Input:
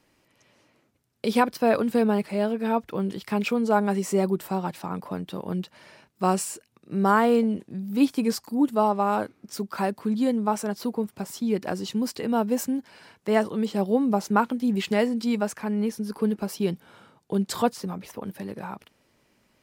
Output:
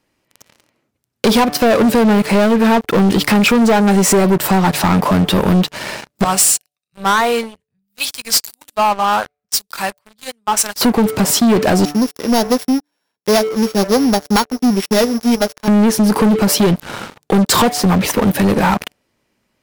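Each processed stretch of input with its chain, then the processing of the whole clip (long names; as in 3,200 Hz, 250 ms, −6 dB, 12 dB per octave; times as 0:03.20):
0:06.24–0:10.81: guitar amp tone stack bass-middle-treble 10-0-10 + flanger 2 Hz, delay 4.1 ms, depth 1.5 ms, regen −68% + multiband upward and downward expander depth 100%
0:11.85–0:15.68: samples sorted by size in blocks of 8 samples + high-pass filter 190 Hz + expander for the loud parts 2.5 to 1, over −31 dBFS
whole clip: hum removal 146.2 Hz, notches 5; downward compressor 5 to 1, threshold −29 dBFS; leveller curve on the samples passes 5; level +8.5 dB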